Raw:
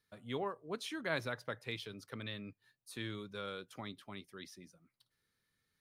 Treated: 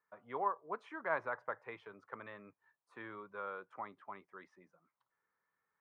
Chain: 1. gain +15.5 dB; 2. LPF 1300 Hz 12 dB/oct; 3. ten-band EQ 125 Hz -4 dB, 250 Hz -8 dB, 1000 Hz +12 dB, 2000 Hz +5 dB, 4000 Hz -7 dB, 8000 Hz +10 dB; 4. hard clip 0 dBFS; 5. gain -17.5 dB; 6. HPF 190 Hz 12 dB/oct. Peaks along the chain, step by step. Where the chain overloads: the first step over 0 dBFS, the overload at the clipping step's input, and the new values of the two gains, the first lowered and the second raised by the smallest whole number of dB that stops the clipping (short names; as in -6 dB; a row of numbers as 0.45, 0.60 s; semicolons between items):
-4.5, -8.0, -2.5, -2.5, -20.0, -20.5 dBFS; no overload